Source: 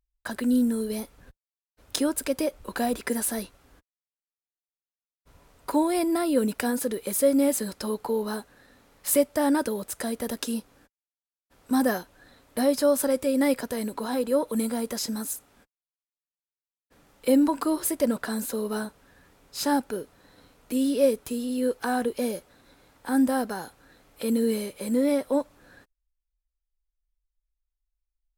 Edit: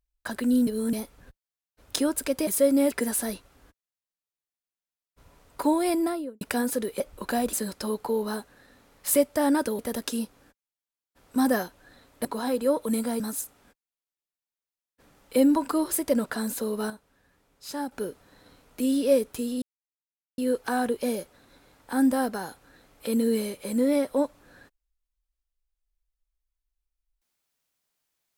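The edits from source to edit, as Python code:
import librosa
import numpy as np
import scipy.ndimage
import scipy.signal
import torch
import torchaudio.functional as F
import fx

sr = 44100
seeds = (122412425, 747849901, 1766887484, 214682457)

y = fx.studio_fade_out(x, sr, start_s=6.05, length_s=0.45)
y = fx.edit(y, sr, fx.reverse_span(start_s=0.67, length_s=0.26),
    fx.swap(start_s=2.47, length_s=0.53, other_s=7.09, other_length_s=0.44),
    fx.cut(start_s=9.79, length_s=0.35),
    fx.cut(start_s=12.6, length_s=1.31),
    fx.cut(start_s=14.86, length_s=0.26),
    fx.clip_gain(start_s=18.82, length_s=1.02, db=-8.5),
    fx.insert_silence(at_s=21.54, length_s=0.76), tone=tone)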